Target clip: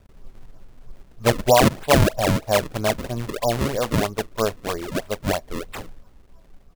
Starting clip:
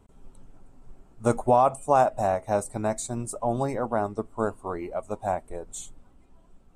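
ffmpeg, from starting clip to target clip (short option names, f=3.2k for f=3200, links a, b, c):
-af "aecho=1:1:1.8:0.37,acrusher=samples=33:mix=1:aa=0.000001:lfo=1:lforange=52.8:lforate=3.1,volume=4dB"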